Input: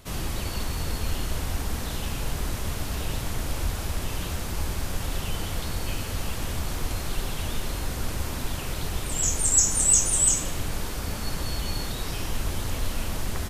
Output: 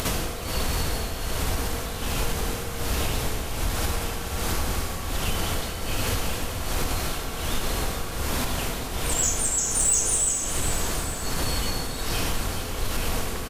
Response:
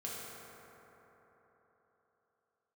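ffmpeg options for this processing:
-filter_complex "[0:a]acompressor=mode=upward:threshold=-28dB:ratio=2.5,tremolo=f=1.3:d=0.82,acompressor=threshold=-30dB:ratio=5,asplit=2[a][b];[b]highpass=240[c];[1:a]atrim=start_sample=2205[d];[c][d]afir=irnorm=-1:irlink=0,volume=-2.5dB[e];[a][e]amix=inputs=2:normalize=0,aeval=exprs='0.188*sin(PI/2*1.58*val(0)/0.188)':c=same,aecho=1:1:429|858|1287|1716|2145|2574|3003:0.316|0.183|0.106|0.0617|0.0358|0.0208|0.012"

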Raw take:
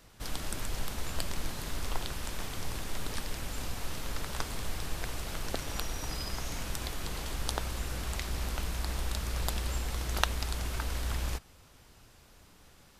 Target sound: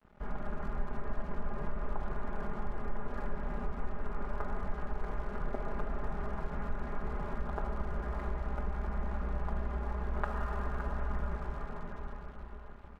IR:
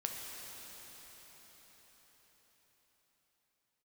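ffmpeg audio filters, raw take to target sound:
-filter_complex "[0:a]lowpass=f=1.5k:w=0.5412,lowpass=f=1.5k:w=1.3066[a];[1:a]atrim=start_sample=2205,asetrate=52920,aresample=44100[b];[a][b]afir=irnorm=-1:irlink=0,acompressor=threshold=-40dB:ratio=2,aecho=1:1:4.9:0.98,aeval=exprs='sgn(val(0))*max(abs(val(0))-0.00126,0)':c=same,volume=3.5dB"

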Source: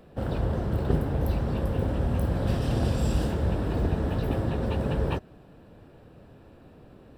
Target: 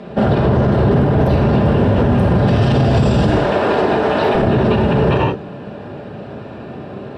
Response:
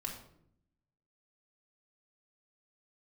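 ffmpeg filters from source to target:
-filter_complex "[0:a]asetnsamples=n=441:p=0,asendcmd='3.29 highpass f 440;4.35 highpass f 160',highpass=130,lowpass=4.4k[a];[1:a]atrim=start_sample=2205,atrim=end_sample=4410,asetrate=24696,aresample=44100[b];[a][b]afir=irnorm=-1:irlink=0,alimiter=level_in=24dB:limit=-1dB:release=50:level=0:latency=1,volume=-5dB"

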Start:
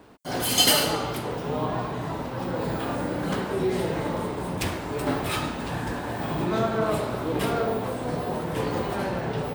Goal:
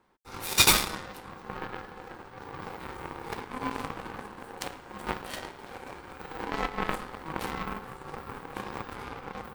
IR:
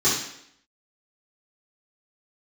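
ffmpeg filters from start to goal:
-af "aeval=exprs='val(0)*sin(2*PI*640*n/s)':c=same,aeval=exprs='0.531*(cos(1*acos(clip(val(0)/0.531,-1,1)))-cos(1*PI/2))+0.0668*(cos(7*acos(clip(val(0)/0.531,-1,1)))-cos(7*PI/2))':c=same,volume=4.5dB"

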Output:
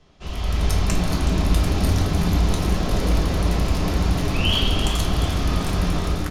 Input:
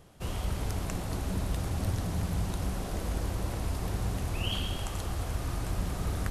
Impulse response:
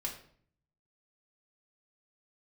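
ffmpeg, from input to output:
-filter_complex "[0:a]acrossover=split=180|5900[a][b][c];[c]acrusher=bits=6:mix=0:aa=0.000001[d];[a][b][d]amix=inputs=3:normalize=0[e];[1:a]atrim=start_sample=2205,asetrate=48510,aresample=44100[f];[e][f]afir=irnorm=-1:irlink=0,dynaudnorm=f=190:g=5:m=9.5dB,lowpass=12k,highshelf=f=2.8k:g=9,bandreject=f=7.9k:w=12,asplit=2[g][h];[h]asplit=6[i][j][k][l][m][n];[i]adelay=372,afreqshift=120,volume=-11.5dB[o];[j]adelay=744,afreqshift=240,volume=-16.5dB[p];[k]adelay=1116,afreqshift=360,volume=-21.6dB[q];[l]adelay=1488,afreqshift=480,volume=-26.6dB[r];[m]adelay=1860,afreqshift=600,volume=-31.6dB[s];[n]adelay=2232,afreqshift=720,volume=-36.7dB[t];[o][p][q][r][s][t]amix=inputs=6:normalize=0[u];[g][u]amix=inputs=2:normalize=0"

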